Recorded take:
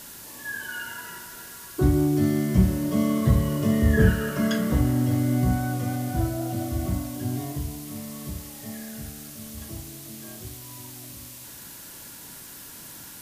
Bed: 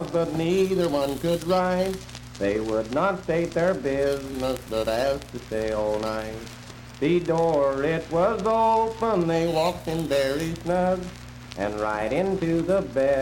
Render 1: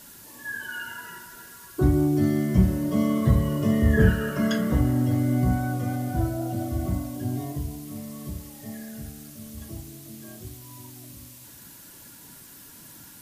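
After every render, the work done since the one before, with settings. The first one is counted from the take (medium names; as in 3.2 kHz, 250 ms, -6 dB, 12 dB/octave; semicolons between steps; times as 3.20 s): noise reduction 6 dB, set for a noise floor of -43 dBFS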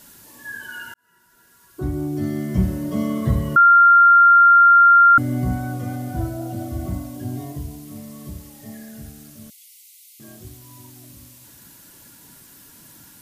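0.94–2.67 s: fade in; 3.56–5.18 s: bleep 1.39 kHz -7.5 dBFS; 9.50–10.20 s: Chebyshev high-pass 2 kHz, order 10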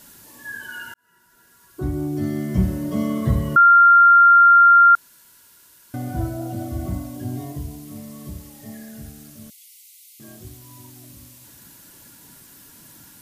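4.95–5.94 s: room tone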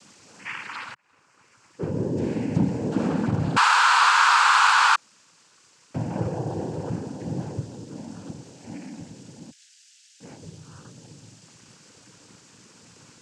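overload inside the chain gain 16.5 dB; noise-vocoded speech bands 8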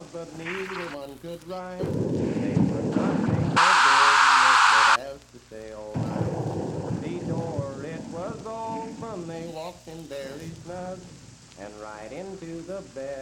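add bed -13 dB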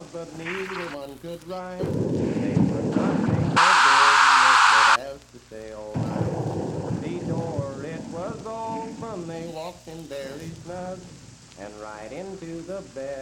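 trim +1.5 dB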